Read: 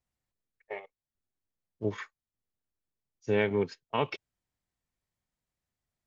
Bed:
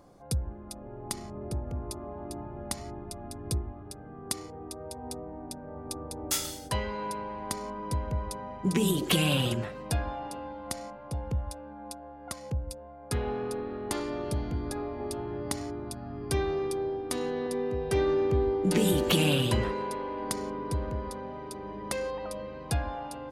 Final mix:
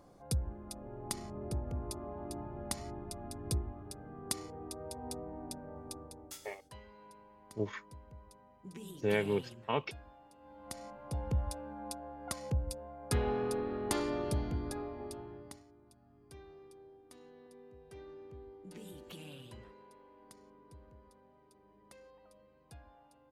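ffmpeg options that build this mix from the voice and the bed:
-filter_complex "[0:a]adelay=5750,volume=-4dB[a];[1:a]volume=17.5dB,afade=t=out:st=5.52:d=0.86:silence=0.11885,afade=t=in:st=10.38:d=1.06:silence=0.0891251,afade=t=out:st=14.06:d=1.58:silence=0.0630957[b];[a][b]amix=inputs=2:normalize=0"

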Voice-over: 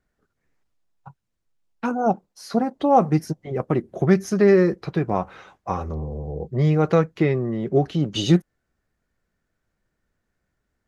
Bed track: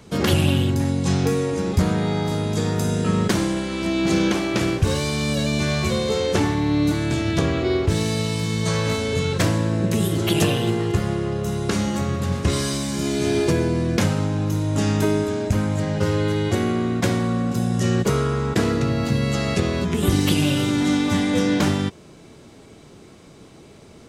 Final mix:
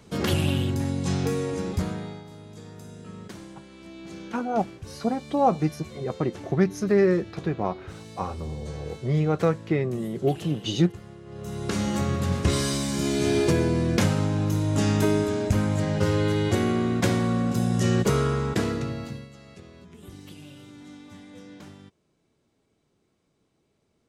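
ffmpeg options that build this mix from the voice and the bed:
-filter_complex "[0:a]adelay=2500,volume=-4.5dB[a];[1:a]volume=13.5dB,afade=t=out:st=1.59:d=0.65:silence=0.16788,afade=t=in:st=11.25:d=0.73:silence=0.112202,afade=t=out:st=18.27:d=1.02:silence=0.0668344[b];[a][b]amix=inputs=2:normalize=0"

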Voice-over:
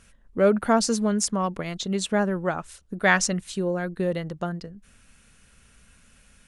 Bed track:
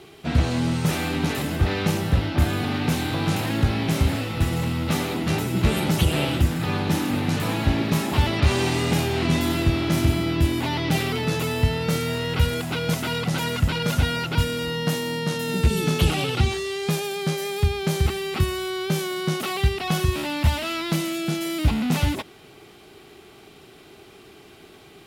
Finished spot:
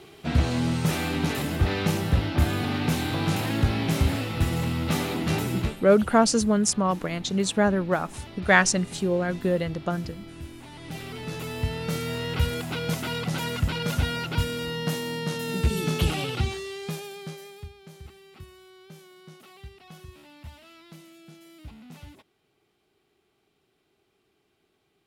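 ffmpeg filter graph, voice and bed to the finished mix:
-filter_complex "[0:a]adelay=5450,volume=1.5dB[a];[1:a]volume=13.5dB,afade=t=out:st=5.53:d=0.23:silence=0.133352,afade=t=in:st=10.72:d=1.5:silence=0.16788,afade=t=out:st=16.09:d=1.65:silence=0.105925[b];[a][b]amix=inputs=2:normalize=0"

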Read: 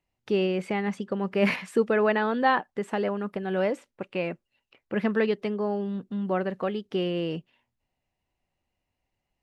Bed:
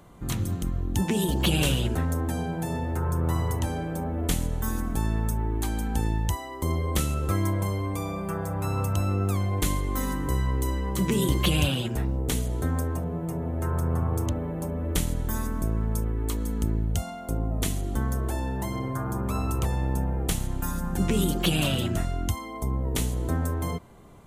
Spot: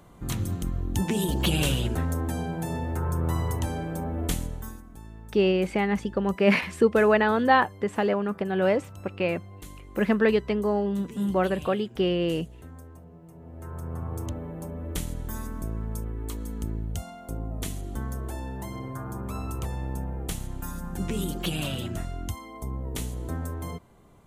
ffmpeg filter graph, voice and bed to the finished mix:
-filter_complex "[0:a]adelay=5050,volume=3dB[a];[1:a]volume=11.5dB,afade=t=out:st=4.23:d=0.59:silence=0.141254,afade=t=in:st=13.33:d=0.96:silence=0.237137[b];[a][b]amix=inputs=2:normalize=0"

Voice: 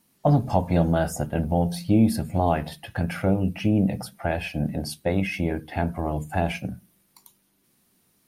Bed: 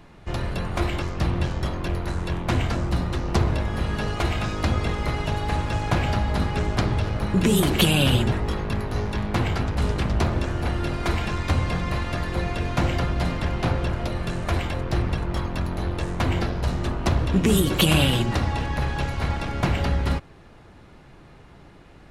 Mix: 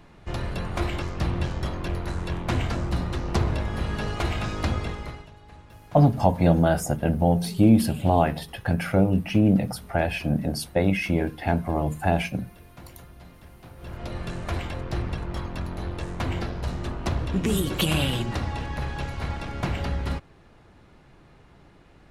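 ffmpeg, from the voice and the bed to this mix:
-filter_complex "[0:a]adelay=5700,volume=2dB[a];[1:a]volume=15.5dB,afade=t=out:st=4.66:d=0.63:silence=0.0944061,afade=t=in:st=13.76:d=0.4:silence=0.125893[b];[a][b]amix=inputs=2:normalize=0"

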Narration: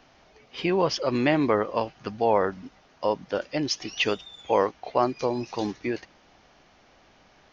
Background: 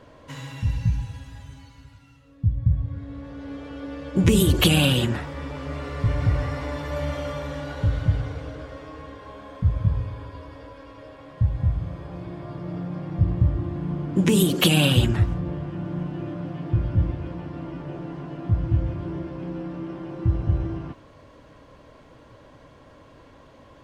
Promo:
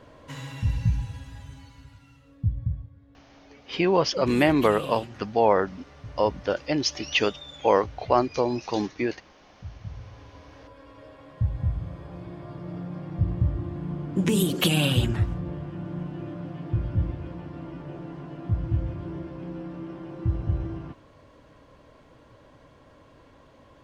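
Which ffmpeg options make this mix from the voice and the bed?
-filter_complex "[0:a]adelay=3150,volume=2dB[a];[1:a]volume=14dB,afade=t=out:st=2.3:d=0.61:silence=0.125893,afade=t=in:st=9.79:d=1.23:silence=0.177828[b];[a][b]amix=inputs=2:normalize=0"

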